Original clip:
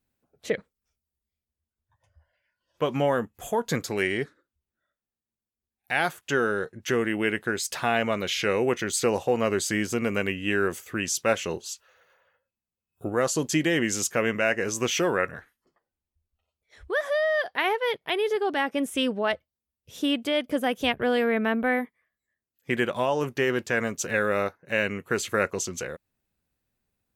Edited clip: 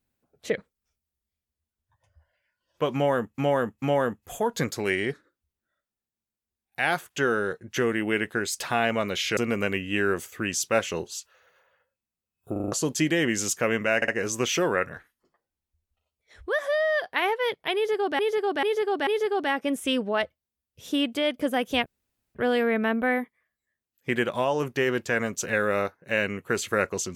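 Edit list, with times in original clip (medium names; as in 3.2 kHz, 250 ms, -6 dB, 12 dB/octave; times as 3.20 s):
2.94–3.38 s: loop, 3 plays
8.49–9.91 s: delete
13.06 s: stutter in place 0.04 s, 5 plays
14.50 s: stutter 0.06 s, 3 plays
18.17–18.61 s: loop, 4 plays
20.96 s: insert room tone 0.49 s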